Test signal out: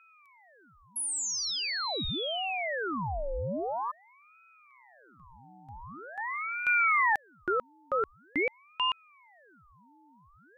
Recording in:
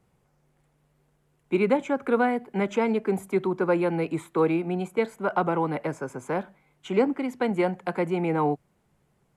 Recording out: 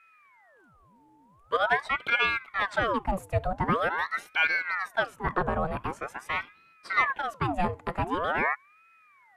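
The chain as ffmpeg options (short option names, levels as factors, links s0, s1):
-af "aeval=exprs='val(0)+0.002*sin(2*PI*590*n/s)':c=same,aeval=exprs='val(0)*sin(2*PI*1100*n/s+1100*0.75/0.45*sin(2*PI*0.45*n/s))':c=same"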